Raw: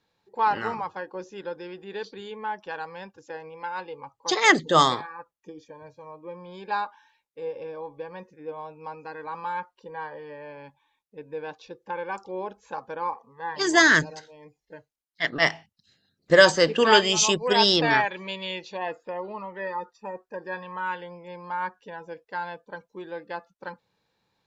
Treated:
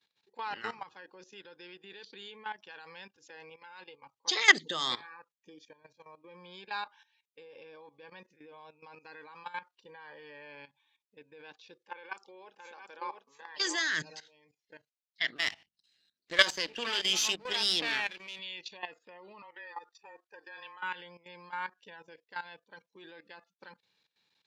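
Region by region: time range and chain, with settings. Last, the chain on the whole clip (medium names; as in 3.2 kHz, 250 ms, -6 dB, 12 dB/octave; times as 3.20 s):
11.85–13.93 s: high-pass 320 Hz + delay 697 ms -5.5 dB
15.36–18.39 s: partial rectifier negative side -12 dB + peaking EQ 150 Hz -9 dB 0.36 oct + hum notches 50/100/150/200/250 Hz
19.42–20.83 s: frequency shift -23 Hz + high-pass 480 Hz
whole clip: peaking EQ 560 Hz -3 dB 0.74 oct; level held to a coarse grid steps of 15 dB; frequency weighting D; trim -6.5 dB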